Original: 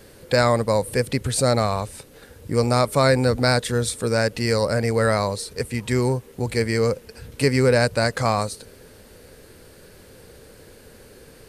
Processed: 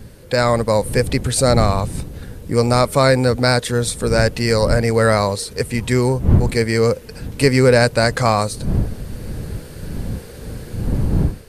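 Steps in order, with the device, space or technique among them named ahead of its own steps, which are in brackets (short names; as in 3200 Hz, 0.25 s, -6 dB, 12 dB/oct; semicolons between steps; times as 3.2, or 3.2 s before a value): smartphone video outdoors (wind noise 130 Hz -29 dBFS; AGC gain up to 8.5 dB; AAC 128 kbps 48000 Hz)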